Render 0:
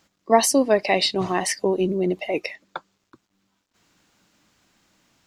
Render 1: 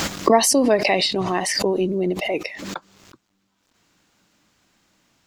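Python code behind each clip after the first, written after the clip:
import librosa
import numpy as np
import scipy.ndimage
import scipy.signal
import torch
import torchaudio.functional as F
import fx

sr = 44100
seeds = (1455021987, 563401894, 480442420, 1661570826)

y = fx.pre_swell(x, sr, db_per_s=33.0)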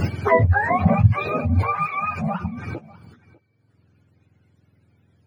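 y = fx.octave_mirror(x, sr, pivot_hz=670.0)
y = y + 10.0 ** (-22.0 / 20.0) * np.pad(y, (int(597 * sr / 1000.0), 0))[:len(y)]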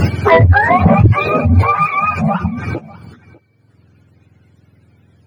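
y = fx.fold_sine(x, sr, drive_db=6, ceiling_db=-2.0)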